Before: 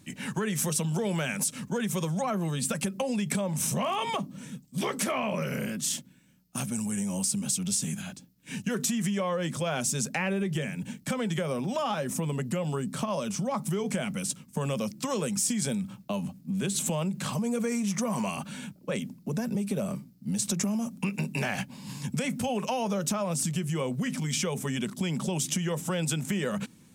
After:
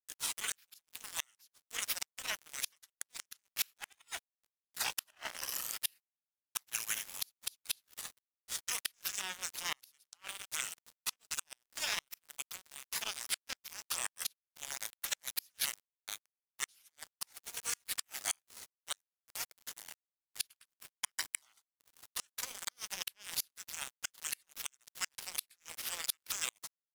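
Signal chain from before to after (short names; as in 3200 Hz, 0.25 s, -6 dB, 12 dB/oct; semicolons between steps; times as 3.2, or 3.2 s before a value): HPF 1400 Hz 24 dB/oct; spectral gate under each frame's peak -15 dB weak; crossover distortion -52 dBFS; flipped gate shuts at -35 dBFS, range -38 dB; vibrato 0.34 Hz 59 cents; gain +17.5 dB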